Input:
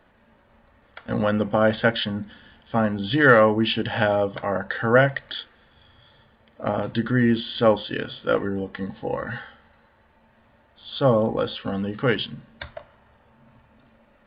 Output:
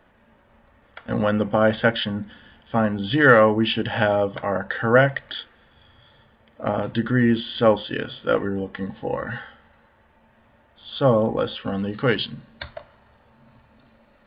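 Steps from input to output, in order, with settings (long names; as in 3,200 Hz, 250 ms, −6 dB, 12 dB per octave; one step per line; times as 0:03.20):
parametric band 4,200 Hz −6.5 dB 0.23 octaves, from 0:11.79 +8 dB
level +1 dB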